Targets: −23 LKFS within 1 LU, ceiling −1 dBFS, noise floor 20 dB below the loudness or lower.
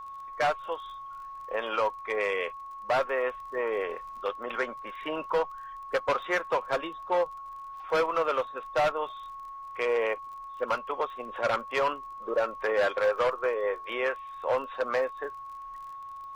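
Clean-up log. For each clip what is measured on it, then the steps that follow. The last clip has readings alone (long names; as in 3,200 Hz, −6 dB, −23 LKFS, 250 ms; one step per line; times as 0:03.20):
crackle rate 35 per second; interfering tone 1,100 Hz; level of the tone −39 dBFS; integrated loudness −30.0 LKFS; sample peak −17.5 dBFS; target loudness −23.0 LKFS
→ click removal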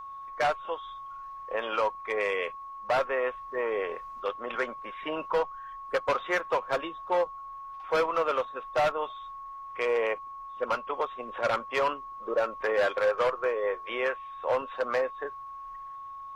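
crackle rate 0 per second; interfering tone 1,100 Hz; level of the tone −39 dBFS
→ notch filter 1,100 Hz, Q 30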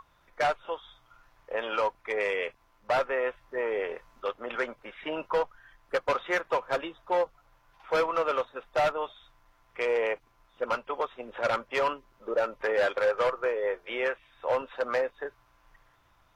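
interfering tone none found; integrated loudness −30.5 LKFS; sample peak −17.0 dBFS; target loudness −23.0 LKFS
→ level +7.5 dB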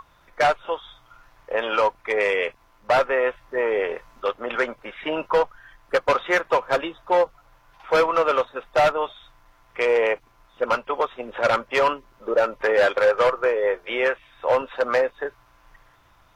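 integrated loudness −23.0 LKFS; sample peak −9.5 dBFS; background noise floor −57 dBFS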